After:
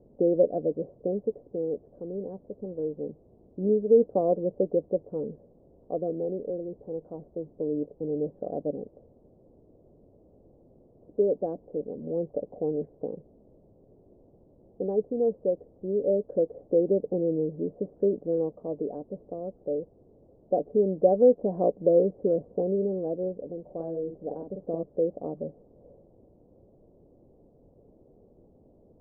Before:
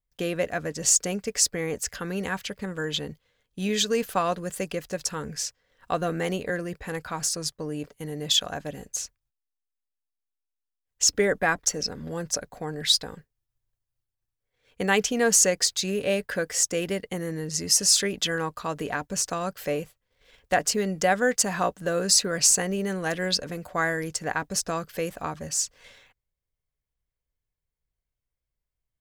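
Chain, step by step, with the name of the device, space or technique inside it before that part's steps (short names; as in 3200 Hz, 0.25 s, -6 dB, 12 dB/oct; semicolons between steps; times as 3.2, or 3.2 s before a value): shortwave radio (BPF 310–3000 Hz; tremolo 0.23 Hz, depth 61%; white noise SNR 16 dB); 23.62–24.83 doubler 48 ms -5 dB; steep low-pass 570 Hz 36 dB/oct; gain +9 dB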